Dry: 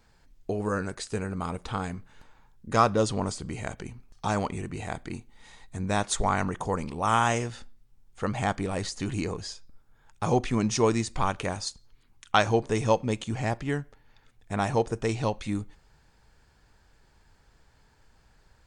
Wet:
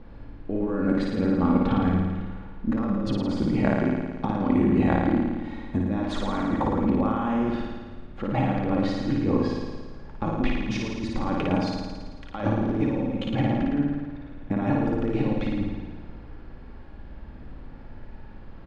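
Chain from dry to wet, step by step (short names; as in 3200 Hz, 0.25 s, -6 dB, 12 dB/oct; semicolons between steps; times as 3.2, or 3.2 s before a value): bell 260 Hz +12 dB 1.7 oct; comb 3.6 ms, depth 45%; negative-ratio compressor -27 dBFS, ratio -1; added noise brown -44 dBFS; air absorption 360 m; flutter echo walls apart 9.5 m, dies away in 1.4 s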